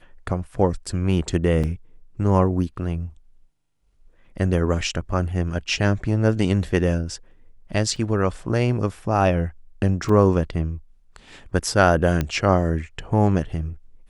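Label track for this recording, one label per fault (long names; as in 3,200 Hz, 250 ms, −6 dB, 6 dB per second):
1.630000	1.640000	drop-out 6.3 ms
7.960000	7.960000	drop-out 2.9 ms
10.090000	10.090000	drop-out 3.7 ms
12.210000	12.210000	click −10 dBFS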